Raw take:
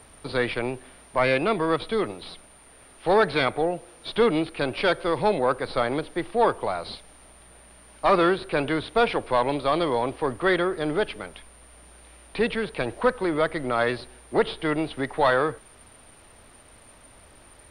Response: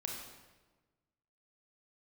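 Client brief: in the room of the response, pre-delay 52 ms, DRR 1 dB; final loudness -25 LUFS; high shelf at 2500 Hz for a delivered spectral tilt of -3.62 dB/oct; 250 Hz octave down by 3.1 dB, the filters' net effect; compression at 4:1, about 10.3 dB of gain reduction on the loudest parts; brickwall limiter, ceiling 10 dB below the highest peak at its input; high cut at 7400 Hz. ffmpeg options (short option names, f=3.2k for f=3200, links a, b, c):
-filter_complex "[0:a]lowpass=7.4k,equalizer=f=250:t=o:g=-4.5,highshelf=f=2.5k:g=-3.5,acompressor=threshold=-29dB:ratio=4,alimiter=level_in=3dB:limit=-24dB:level=0:latency=1,volume=-3dB,asplit=2[a][b];[1:a]atrim=start_sample=2205,adelay=52[c];[b][c]afir=irnorm=-1:irlink=0,volume=-1.5dB[d];[a][d]amix=inputs=2:normalize=0,volume=10dB"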